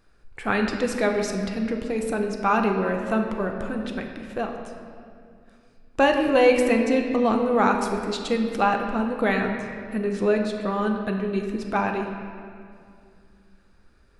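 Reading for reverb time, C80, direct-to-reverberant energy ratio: 2.3 s, 6.0 dB, 2.5 dB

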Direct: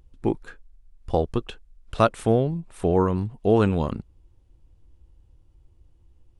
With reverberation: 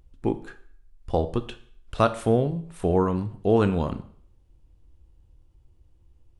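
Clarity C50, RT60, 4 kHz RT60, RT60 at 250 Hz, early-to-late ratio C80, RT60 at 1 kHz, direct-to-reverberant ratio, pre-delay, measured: 15.0 dB, 0.55 s, 0.55 s, 0.55 s, 18.0 dB, 0.55 s, 11.0 dB, 14 ms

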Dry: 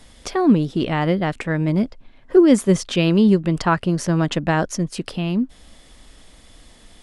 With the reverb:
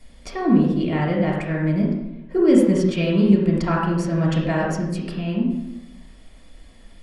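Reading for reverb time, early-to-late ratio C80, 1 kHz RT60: 0.90 s, 4.0 dB, 0.85 s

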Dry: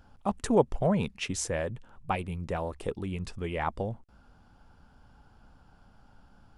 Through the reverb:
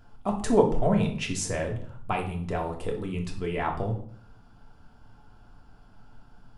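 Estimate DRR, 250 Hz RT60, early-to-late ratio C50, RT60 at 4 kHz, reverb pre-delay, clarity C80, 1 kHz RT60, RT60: 1.0 dB, 0.75 s, 9.0 dB, 0.45 s, 3 ms, 13.5 dB, 0.55 s, 0.55 s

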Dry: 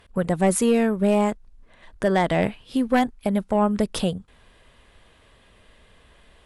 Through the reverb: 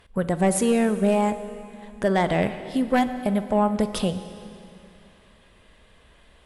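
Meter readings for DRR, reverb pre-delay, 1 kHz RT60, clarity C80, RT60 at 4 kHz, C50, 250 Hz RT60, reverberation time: 10.5 dB, 5 ms, 2.7 s, 12.0 dB, 2.5 s, 11.0 dB, 2.8 s, 2.7 s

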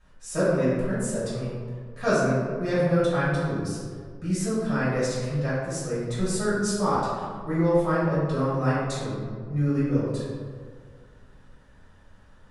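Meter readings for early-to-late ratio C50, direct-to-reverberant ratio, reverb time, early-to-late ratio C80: −1.5 dB, −11.0 dB, 1.9 s, 1.0 dB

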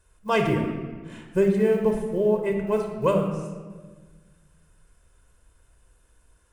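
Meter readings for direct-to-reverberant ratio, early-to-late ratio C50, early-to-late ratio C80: 3.5 dB, 5.0 dB, 7.0 dB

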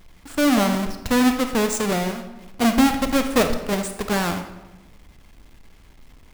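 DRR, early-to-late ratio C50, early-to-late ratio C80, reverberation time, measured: 6.5 dB, 8.0 dB, 10.5 dB, 1.1 s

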